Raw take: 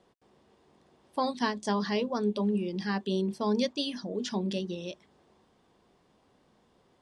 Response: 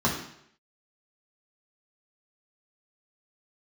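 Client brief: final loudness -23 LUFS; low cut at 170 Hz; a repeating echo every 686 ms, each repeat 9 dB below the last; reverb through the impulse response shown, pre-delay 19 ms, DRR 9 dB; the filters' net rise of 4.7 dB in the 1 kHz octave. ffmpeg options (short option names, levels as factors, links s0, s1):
-filter_complex "[0:a]highpass=170,equalizer=f=1000:t=o:g=5.5,aecho=1:1:686|1372|2058|2744:0.355|0.124|0.0435|0.0152,asplit=2[s0][s1];[1:a]atrim=start_sample=2205,adelay=19[s2];[s1][s2]afir=irnorm=-1:irlink=0,volume=0.075[s3];[s0][s3]amix=inputs=2:normalize=0,volume=2"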